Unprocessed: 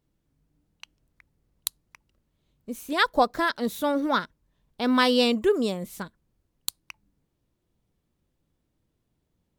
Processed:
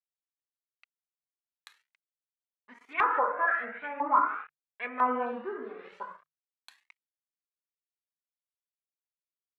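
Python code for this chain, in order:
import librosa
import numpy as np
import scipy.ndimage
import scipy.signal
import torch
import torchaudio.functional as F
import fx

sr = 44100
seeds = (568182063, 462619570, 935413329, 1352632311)

y = fx.peak_eq(x, sr, hz=400.0, db=12.5, octaves=2.6)
y = fx.rev_gated(y, sr, seeds[0], gate_ms=330, shape='falling', drr_db=-2.0)
y = np.sign(y) * np.maximum(np.abs(y) - 10.0 ** (-30.5 / 20.0), 0.0)
y = fx.env_lowpass_down(y, sr, base_hz=1200.0, full_db=-8.0)
y = fx.high_shelf_res(y, sr, hz=3600.0, db=-14.0, q=3.0, at=(2.93, 5.26))
y = fx.filter_lfo_bandpass(y, sr, shape='saw_up', hz=1.0, low_hz=980.0, high_hz=2300.0, q=3.8)
y = fx.hum_notches(y, sr, base_hz=50, count=3)
y = fx.comb_cascade(y, sr, direction='rising', hz=0.72)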